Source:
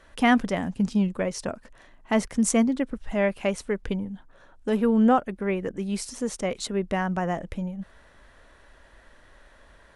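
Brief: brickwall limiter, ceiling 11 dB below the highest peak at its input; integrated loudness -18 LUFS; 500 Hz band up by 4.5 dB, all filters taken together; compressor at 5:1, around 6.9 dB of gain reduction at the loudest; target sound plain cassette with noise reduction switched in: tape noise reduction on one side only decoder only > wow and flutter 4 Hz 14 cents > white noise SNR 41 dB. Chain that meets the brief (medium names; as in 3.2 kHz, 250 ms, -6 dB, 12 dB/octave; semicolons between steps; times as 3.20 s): peaking EQ 500 Hz +5.5 dB; compression 5:1, threshold -21 dBFS; peak limiter -22.5 dBFS; tape noise reduction on one side only decoder only; wow and flutter 4 Hz 14 cents; white noise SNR 41 dB; trim +14.5 dB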